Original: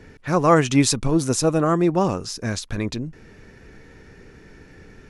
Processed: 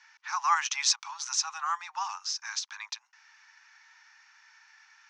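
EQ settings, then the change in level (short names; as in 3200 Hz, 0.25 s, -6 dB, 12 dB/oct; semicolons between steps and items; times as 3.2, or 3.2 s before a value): steep high-pass 830 Hz 96 dB/oct; synth low-pass 6000 Hz, resonance Q 4.1; air absorption 100 m; -4.5 dB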